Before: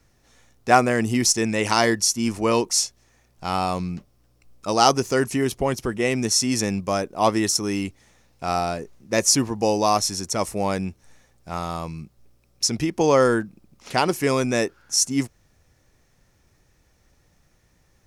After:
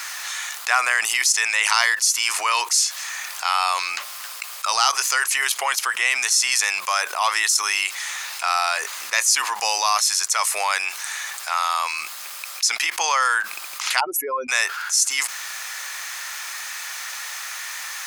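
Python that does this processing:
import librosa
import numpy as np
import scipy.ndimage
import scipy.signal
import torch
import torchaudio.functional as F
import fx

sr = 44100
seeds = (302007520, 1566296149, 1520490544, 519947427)

y = fx.spec_expand(x, sr, power=3.4, at=(13.99, 14.48), fade=0.02)
y = scipy.signal.sosfilt(scipy.signal.butter(4, 1100.0, 'highpass', fs=sr, output='sos'), y)
y = fx.notch(y, sr, hz=5600.0, q=13.0)
y = fx.env_flatten(y, sr, amount_pct=70)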